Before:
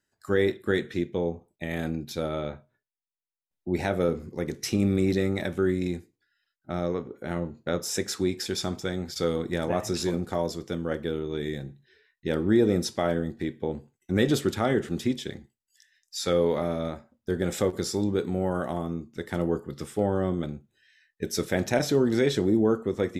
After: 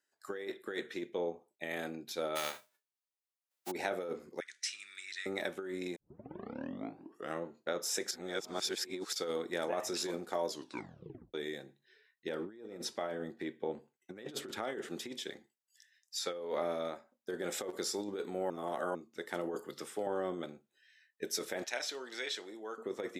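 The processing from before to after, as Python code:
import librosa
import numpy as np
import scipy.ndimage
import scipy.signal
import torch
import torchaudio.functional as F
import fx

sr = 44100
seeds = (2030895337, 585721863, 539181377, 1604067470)

y = fx.envelope_flatten(x, sr, power=0.3, at=(2.35, 3.7), fade=0.02)
y = fx.ellip_bandpass(y, sr, low_hz=1600.0, high_hz=9200.0, order=3, stop_db=40, at=(4.4, 5.26))
y = fx.bass_treble(y, sr, bass_db=4, treble_db=-5, at=(12.29, 14.63))
y = fx.high_shelf(y, sr, hz=6100.0, db=-5.5, at=(16.19, 16.69))
y = fx.band_squash(y, sr, depth_pct=70, at=(19.56, 20.07))
y = fx.bandpass_q(y, sr, hz=3500.0, q=0.62, at=(21.64, 22.78))
y = fx.edit(y, sr, fx.tape_start(start_s=5.96, length_s=1.48),
    fx.reverse_span(start_s=8.11, length_s=1.02),
    fx.tape_stop(start_s=10.48, length_s=0.86),
    fx.reverse_span(start_s=18.5, length_s=0.45), tone=tone)
y = fx.over_compress(y, sr, threshold_db=-26.0, ratio=-0.5)
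y = scipy.signal.sosfilt(scipy.signal.butter(2, 410.0, 'highpass', fs=sr, output='sos'), y)
y = y * librosa.db_to_amplitude(-5.5)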